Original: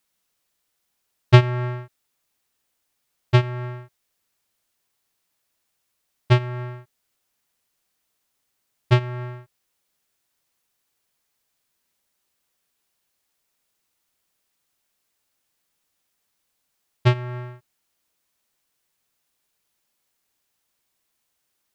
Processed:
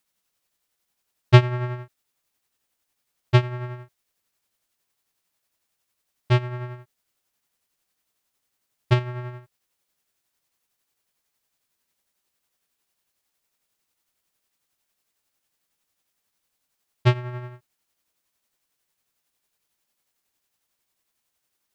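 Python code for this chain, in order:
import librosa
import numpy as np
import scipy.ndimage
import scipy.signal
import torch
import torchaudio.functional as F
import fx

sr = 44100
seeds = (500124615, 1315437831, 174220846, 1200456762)

y = x * (1.0 - 0.4 / 2.0 + 0.4 / 2.0 * np.cos(2.0 * np.pi * 11.0 * (np.arange(len(x)) / sr)))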